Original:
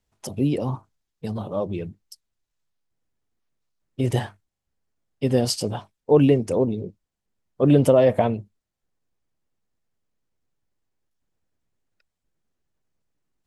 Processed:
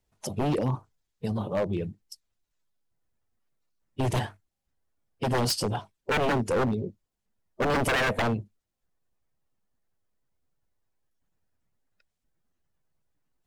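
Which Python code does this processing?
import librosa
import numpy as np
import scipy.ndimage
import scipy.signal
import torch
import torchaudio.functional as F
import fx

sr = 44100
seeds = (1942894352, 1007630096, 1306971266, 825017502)

y = fx.spec_quant(x, sr, step_db=15)
y = 10.0 ** (-19.5 / 20.0) * (np.abs((y / 10.0 ** (-19.5 / 20.0) + 3.0) % 4.0 - 2.0) - 1.0)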